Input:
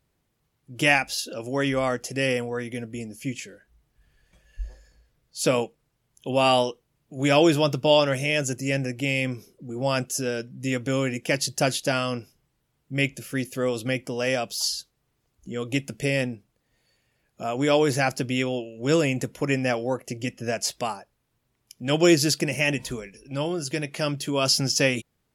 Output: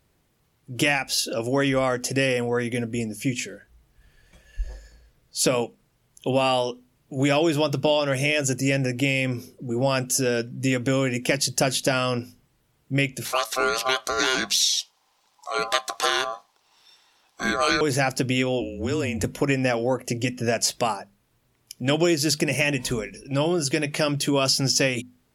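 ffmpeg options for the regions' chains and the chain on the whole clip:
-filter_complex "[0:a]asettb=1/sr,asplit=3[a][b][c];[a]atrim=end=13.254[d];[b]atrim=start=13.25:end=17.81,asetpts=PTS-STARTPTS,afade=t=in:d=0.004:c=qsin,afade=t=out:st=4.556:d=0.004:c=qsin,deesser=0.45,equalizer=f=4.3k:t=o:w=1.6:g=12.5,aeval=exprs='val(0)*sin(2*PI*910*n/s)':c=same[e];[c]atrim=start=17.806[f];[d][e]acrossfade=d=0.004:c1=hsin:c2=qsin[g];[g][f]acrossfade=d=0.004:c1=qsin:c2=hsin,asettb=1/sr,asplit=3[h][i][j];[h]atrim=end=18.614[k];[i]atrim=start=18.61:end=19.24,asetpts=PTS-STARTPTS,afade=t=in:d=0.004:c=qsin,afade=t=out:st=0.626:d=0.004:c=qsin,equalizer=f=68:t=o:w=1.3:g=7,acompressor=threshold=-29dB:ratio=6:attack=3.2:release=140:knee=1:detection=peak,afreqshift=-32[l];[j]atrim=start=19.236[m];[k][l]acrossfade=d=0.004:c1=hsin:c2=qsin[n];[n][m]acrossfade=d=0.004:c1=qsin:c2=hsin,acompressor=threshold=-25dB:ratio=6,bandreject=f=50:t=h:w=6,bandreject=f=100:t=h:w=6,bandreject=f=150:t=h:w=6,bandreject=f=200:t=h:w=6,bandreject=f=250:t=h:w=6,acontrast=81"

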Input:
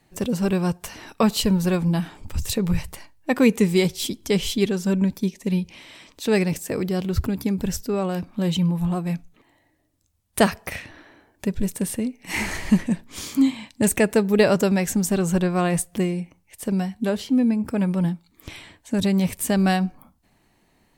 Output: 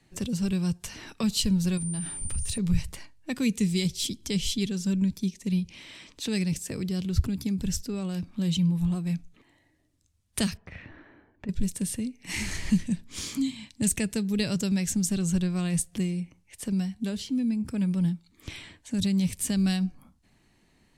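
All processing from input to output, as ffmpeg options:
-filter_complex "[0:a]asettb=1/sr,asplit=3[a][b][c];[a]atrim=end=1.774[d];[b]atrim=start=1.77:end=2.58,asetpts=PTS-STARTPTS,afade=t=in:d=0.004:c=qsin,afade=t=out:st=0.806:d=0.004:c=qsin,asubboost=boost=5.5:cutoff=230,acompressor=threshold=-27dB:ratio=5:attack=3.2:release=140:knee=1:detection=peak,aeval=exprs='val(0)+0.0251*sin(2*PI*9100*n/s)':c=same[e];[c]atrim=start=2.576[f];[d][e]acrossfade=d=0.004:c1=hsin:c2=qsin[g];[g][f]acrossfade=d=0.004:c1=qsin:c2=hsin,asettb=1/sr,asplit=3[h][i][j];[h]atrim=end=10.574[k];[i]atrim=start=10.57:end=11.49,asetpts=PTS-STARTPTS,afade=t=in:d=0.004:c=qsin,afade=t=out:st=0.916:d=0.004:c=qsin,lowpass=1.8k,acompressor=threshold=-36dB:ratio=2:attack=3.2:release=140:knee=1:detection=peak[l];[j]atrim=start=11.486[m];[k][l]acrossfade=d=0.004:c1=hsin:c2=qsin[n];[n][m]acrossfade=d=0.004:c1=qsin:c2=hsin,lowpass=9.6k,equalizer=f=760:w=0.79:g=-6.5,acrossover=split=200|3000[o][p][q];[p]acompressor=threshold=-41dB:ratio=2.5[r];[o][r][q]amix=inputs=3:normalize=0"

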